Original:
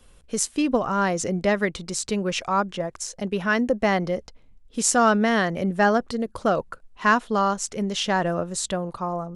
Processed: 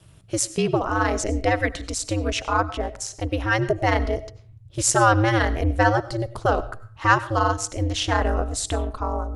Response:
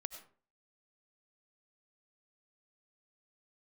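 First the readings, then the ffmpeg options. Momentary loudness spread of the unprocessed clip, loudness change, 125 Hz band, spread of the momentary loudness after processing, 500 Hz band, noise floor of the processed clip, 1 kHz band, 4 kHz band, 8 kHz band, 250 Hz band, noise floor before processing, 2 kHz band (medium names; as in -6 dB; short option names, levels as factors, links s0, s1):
9 LU, +1.0 dB, +7.5 dB, 10 LU, 0.0 dB, -48 dBFS, +1.5 dB, +1.0 dB, +1.0 dB, -2.5 dB, -53 dBFS, +1.5 dB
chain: -filter_complex "[0:a]aeval=exprs='val(0)*sin(2*PI*110*n/s)':c=same,asplit=2[s0][s1];[s1]asubboost=boost=10:cutoff=75[s2];[1:a]atrim=start_sample=2205[s3];[s2][s3]afir=irnorm=-1:irlink=0,volume=1[s4];[s0][s4]amix=inputs=2:normalize=0,volume=0.891"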